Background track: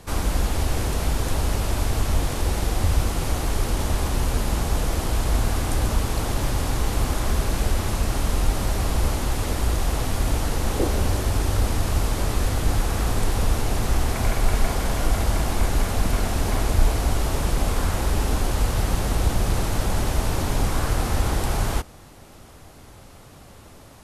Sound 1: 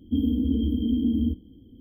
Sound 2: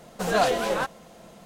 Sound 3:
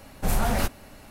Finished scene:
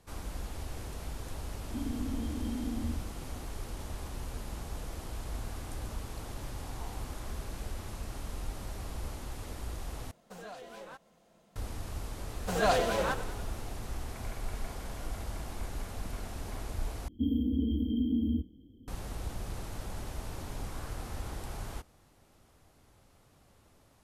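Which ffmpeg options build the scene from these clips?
-filter_complex "[1:a]asplit=2[a][b];[2:a]asplit=2[c][d];[0:a]volume=-17dB[e];[a]acompressor=threshold=-31dB:ratio=6:attack=3.2:release=140:knee=1:detection=peak[f];[3:a]asuperpass=centerf=880:order=4:qfactor=3.2[g];[c]acompressor=threshold=-25dB:ratio=4:attack=2.8:release=581:knee=1:detection=peak[h];[d]asplit=8[i][j][k][l][m][n][o][p];[j]adelay=97,afreqshift=-36,volume=-13dB[q];[k]adelay=194,afreqshift=-72,volume=-16.9dB[r];[l]adelay=291,afreqshift=-108,volume=-20.8dB[s];[m]adelay=388,afreqshift=-144,volume=-24.6dB[t];[n]adelay=485,afreqshift=-180,volume=-28.5dB[u];[o]adelay=582,afreqshift=-216,volume=-32.4dB[v];[p]adelay=679,afreqshift=-252,volume=-36.3dB[w];[i][q][r][s][t][u][v][w]amix=inputs=8:normalize=0[x];[e]asplit=3[y][z][aa];[y]atrim=end=10.114[ab];[h]atrim=end=1.45,asetpts=PTS-STARTPTS,volume=-16.5dB[ac];[z]atrim=start=11.556:end=17.084[ad];[b]atrim=end=1.8,asetpts=PTS-STARTPTS,volume=-6dB[ae];[aa]atrim=start=18.876[af];[f]atrim=end=1.8,asetpts=PTS-STARTPTS,volume=-2.5dB,afade=t=in:d=0.004:c=hsin,afade=t=out:st=1.796:d=0.004:c=hsin,adelay=1630[ag];[g]atrim=end=1.1,asetpts=PTS-STARTPTS,volume=-16.5dB,afade=t=in:d=0.004:c=hsin,afade=t=out:st=1.096:d=0.004:c=hsin,adelay=6380[ah];[x]atrim=end=1.45,asetpts=PTS-STARTPTS,volume=-5dB,afade=t=in:d=0.004:c=hsin,afade=t=out:st=1.446:d=0.004:c=hsin,adelay=12280[ai];[ab][ac]acrossfade=d=0.004:c1=hsin:c2=hsin[aj];[aj][ad]acrossfade=d=0.004:c1=hsin:c2=hsin[ak];[ak][ae]acrossfade=d=0.004:c1=hsin:c2=hsin[al];[al][af]acrossfade=d=0.004:c1=hsin:c2=hsin[am];[am][ag][ah][ai]amix=inputs=4:normalize=0"

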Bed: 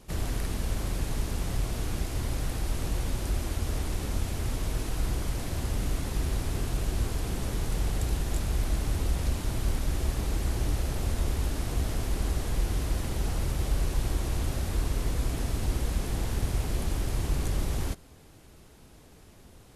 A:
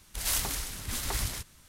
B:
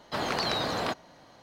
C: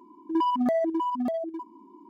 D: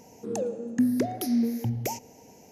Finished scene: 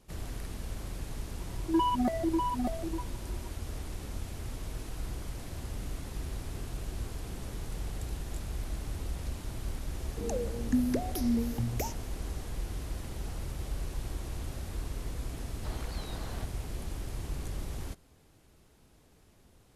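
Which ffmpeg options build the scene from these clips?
-filter_complex "[0:a]volume=-8.5dB[a];[3:a]aecho=1:1:5.4:0.65[b];[2:a]alimiter=limit=-18.5dB:level=0:latency=1:release=71[c];[b]atrim=end=2.09,asetpts=PTS-STARTPTS,volume=-3dB,afade=t=in:d=0.004:c=hsin,afade=t=out:st=2.086:d=0.004:c=hsin,adelay=1390[d];[4:a]atrim=end=2.51,asetpts=PTS-STARTPTS,volume=-4.5dB,afade=t=in:d=0.004:c=hsin,afade=t=out:st=2.506:d=0.004:c=hsin,adelay=438354S[e];[c]atrim=end=1.42,asetpts=PTS-STARTPTS,volume=-16.5dB,afade=t=in:d=0.004:c=hsin,afade=t=out:st=1.416:d=0.004:c=hsin,adelay=15520[f];[a][d][e][f]amix=inputs=4:normalize=0"

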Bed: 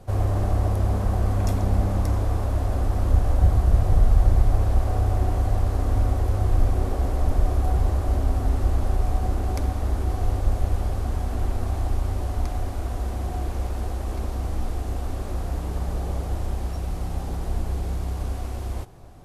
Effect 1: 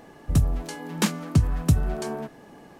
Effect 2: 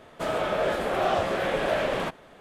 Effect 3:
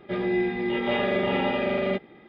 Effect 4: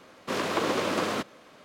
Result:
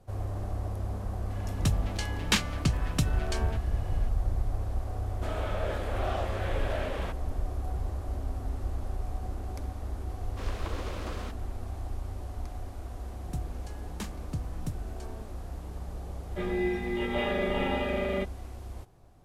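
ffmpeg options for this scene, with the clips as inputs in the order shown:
-filter_complex "[1:a]asplit=2[a][b];[0:a]volume=-11.5dB[c];[a]equalizer=f=3k:w=0.45:g=13[d];[3:a]aeval=exprs='sgn(val(0))*max(abs(val(0))-0.00224,0)':c=same[e];[d]atrim=end=2.79,asetpts=PTS-STARTPTS,volume=-8dB,afade=t=in:d=0.004:c=hsin,afade=t=out:st=2.786:d=0.004:c=hsin,adelay=1300[f];[2:a]atrim=end=2.4,asetpts=PTS-STARTPTS,volume=-9dB,afade=t=in:d=0.004:c=hsin,afade=t=out:st=2.396:d=0.004:c=hsin,adelay=5020[g];[4:a]atrim=end=1.64,asetpts=PTS-STARTPTS,volume=-13dB,afade=t=in:d=0.004:c=hsin,afade=t=out:st=1.636:d=0.004:c=hsin,adelay=10090[h];[b]atrim=end=2.79,asetpts=PTS-STARTPTS,volume=-16dB,afade=t=in:d=0.004:c=hsin,afade=t=out:st=2.786:d=0.004:c=hsin,adelay=12980[i];[e]atrim=end=2.28,asetpts=PTS-STARTPTS,volume=-4.5dB,afade=t=in:d=0.004:c=hsin,afade=t=out:st=2.276:d=0.004:c=hsin,adelay=16270[j];[c][f][g][h][i][j]amix=inputs=6:normalize=0"

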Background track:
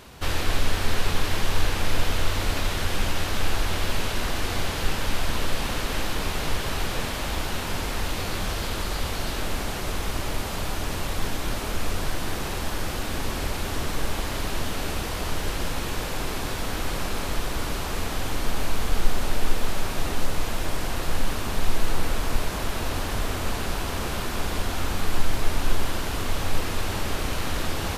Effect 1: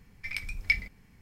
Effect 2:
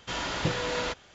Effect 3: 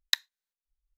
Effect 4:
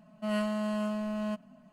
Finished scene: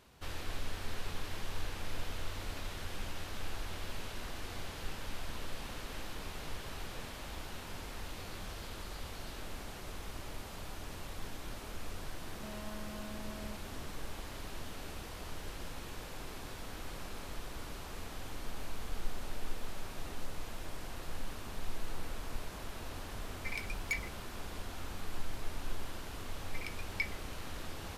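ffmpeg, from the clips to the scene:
-filter_complex "[1:a]asplit=2[a][b];[0:a]volume=-16dB[c];[4:a]acompressor=threshold=-43dB:ratio=6:attack=3.2:release=140:knee=1:detection=peak[d];[a]asoftclip=type=tanh:threshold=-24.5dB[e];[d]atrim=end=1.72,asetpts=PTS-STARTPTS,volume=-2dB,afade=t=in:d=0.004:c=hsin,afade=t=out:st=1.716:d=0.004:c=hsin,adelay=12210[f];[e]atrim=end=1.21,asetpts=PTS-STARTPTS,volume=-4dB,afade=t=in:d=0.004:c=hsin,afade=t=out:st=1.206:d=0.004:c=hsin,adelay=23210[g];[b]atrim=end=1.21,asetpts=PTS-STARTPTS,volume=-10.5dB,afade=t=in:d=0.004:c=hsin,afade=t=out:st=1.206:d=0.004:c=hsin,adelay=26300[h];[c][f][g][h]amix=inputs=4:normalize=0"

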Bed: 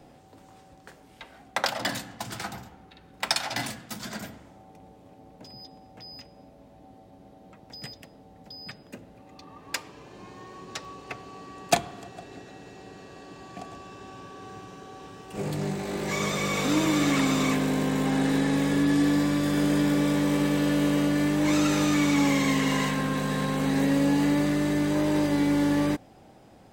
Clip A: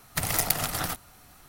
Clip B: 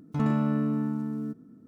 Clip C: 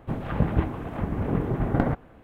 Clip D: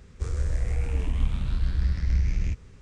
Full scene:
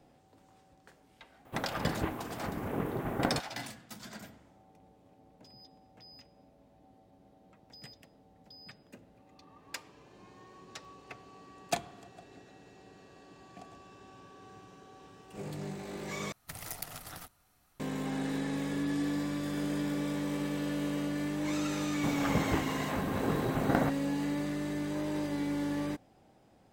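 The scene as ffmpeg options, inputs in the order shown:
-filter_complex "[3:a]asplit=2[a][b];[0:a]volume=-10dB[c];[a]aemphasis=mode=production:type=bsi[d];[b]aemphasis=mode=production:type=bsi[e];[c]asplit=2[f][g];[f]atrim=end=16.324[h];[1:a]atrim=end=1.48,asetpts=PTS-STARTPTS,volume=-16dB[i];[g]atrim=start=17.796[j];[d]atrim=end=2.23,asetpts=PTS-STARTPTS,volume=-3.5dB,afade=t=in:d=0.004:c=hsin,afade=t=out:st=2.226:d=0.004:c=hsin,adelay=1450[k];[e]atrim=end=2.23,asetpts=PTS-STARTPTS,volume=-1dB,afade=t=in:d=0.004:c=hsin,afade=t=out:st=2.226:d=0.004:c=hsin,adelay=21950[l];[h][i]acrossfade=d=0.004:c1=hsin:c2=hsin[m];[m][j]acrossfade=d=0.004:c1=hsin:c2=hsin[n];[n][k][l]amix=inputs=3:normalize=0"

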